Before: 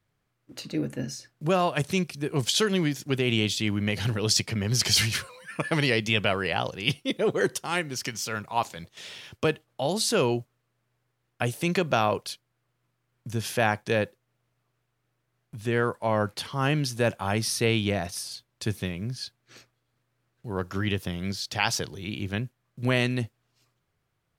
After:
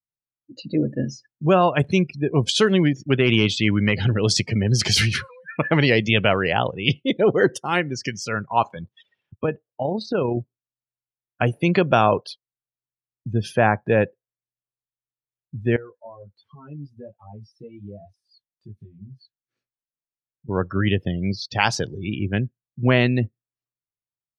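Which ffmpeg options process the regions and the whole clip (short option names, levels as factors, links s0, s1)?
-filter_complex "[0:a]asettb=1/sr,asplit=3[s0][s1][s2];[s0]atrim=end=2.934[s3];[s1]atrim=start=2.93:end=3.94,asetpts=PTS-STARTPTS,afade=t=in:d=0.004:c=qsin,afade=t=out:st=1.006:d=0.004:c=qsin,adynamicequalizer=threshold=0.00794:dfrequency=1700:dqfactor=0.9:tfrequency=1700:tqfactor=0.9:attack=5:release=100:ratio=0.375:range=2.5:mode=boostabove:tftype=bell,asoftclip=type=hard:threshold=0.211[s4];[s2]atrim=start=3.936[s5];[s3][s4]acrossfade=d=0.004:c1=hsin:c2=qsin[s6];[s6][s5]acrossfade=d=0.004:c1=qsin:c2=hsin,asettb=1/sr,asplit=3[s7][s8][s9];[s7]atrim=end=9.024[s10];[s8]atrim=start=9.02:end=10.37,asetpts=PTS-STARTPTS,afade=t=in:d=0.004:c=qsin,afade=t=out:st=1.346:d=0.004:c=qsin,aemphasis=mode=reproduction:type=75kf,acompressor=threshold=0.0501:ratio=2:attack=3.2:release=140:knee=1:detection=peak,tremolo=f=30:d=0.333[s11];[s9]atrim=start=10.366[s12];[s10][s11]acrossfade=d=0.004:c1=hsin:c2=qsin[s13];[s13][s12]acrossfade=d=0.004:c1=qsin:c2=hsin,asettb=1/sr,asplit=3[s14][s15][s16];[s14]atrim=end=13.554[s17];[s15]atrim=start=13.55:end=13.98,asetpts=PTS-STARTPTS,afade=t=in:d=0.004:c=qsin,afade=t=out:st=0.426:d=0.004:c=qsin,lowpass=f=2300:p=1,acompressor=mode=upward:threshold=0.0178:ratio=2.5:attack=3.2:release=140:knee=2.83:detection=peak[s18];[s16]atrim=start=13.976[s19];[s17][s18]acrossfade=d=0.004:c1=hsin:c2=qsin[s20];[s20][s19]acrossfade=d=0.004:c1=qsin:c2=hsin,asettb=1/sr,asplit=3[s21][s22][s23];[s21]atrim=end=15.764[s24];[s22]atrim=start=15.76:end=20.49,asetpts=PTS-STARTPTS,afade=t=in:d=0.004:c=qsin,afade=t=out:st=4.726:d=0.004:c=qsin,acompressor=threshold=0.00708:ratio=3:attack=3.2:release=140:knee=1:detection=peak,flanger=delay=19:depth=2.2:speed=1.3[s25];[s23]atrim=start=20.486[s26];[s24][s25]acrossfade=d=0.004:c1=hsin:c2=qsin[s27];[s27][s26]acrossfade=d=0.004:c1=qsin:c2=hsin,afftdn=nr=36:nf=-36,highshelf=f=4400:g=-10,volume=2.37"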